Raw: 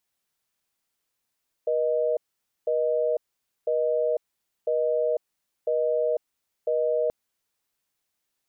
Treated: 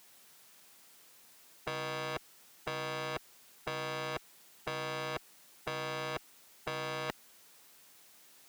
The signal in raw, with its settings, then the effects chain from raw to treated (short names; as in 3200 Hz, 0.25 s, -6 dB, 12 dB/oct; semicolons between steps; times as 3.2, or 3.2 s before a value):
call progress tone busy tone, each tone -24 dBFS 5.43 s
one diode to ground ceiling -28.5 dBFS; HPF 140 Hz 12 dB/oct; spectral compressor 4:1